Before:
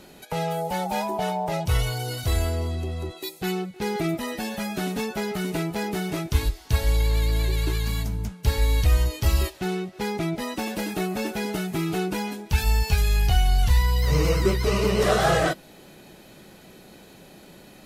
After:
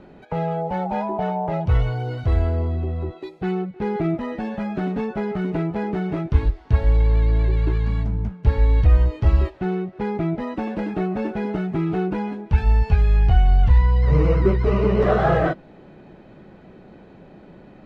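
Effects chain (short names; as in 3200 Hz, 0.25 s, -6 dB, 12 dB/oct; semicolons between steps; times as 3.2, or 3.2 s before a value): LPF 1700 Hz 12 dB/oct; low shelf 460 Hz +4 dB; gain +1 dB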